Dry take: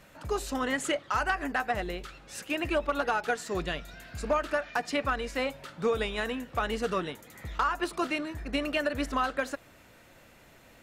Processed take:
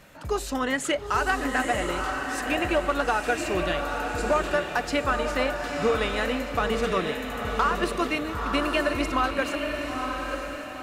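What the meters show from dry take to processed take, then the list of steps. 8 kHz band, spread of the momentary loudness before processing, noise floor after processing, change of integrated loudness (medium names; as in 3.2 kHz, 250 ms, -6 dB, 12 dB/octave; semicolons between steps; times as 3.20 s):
+5.0 dB, 9 LU, -36 dBFS, +4.5 dB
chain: on a send: echo that smears into a reverb 912 ms, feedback 44%, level -4 dB; on the sum: trim +3.5 dB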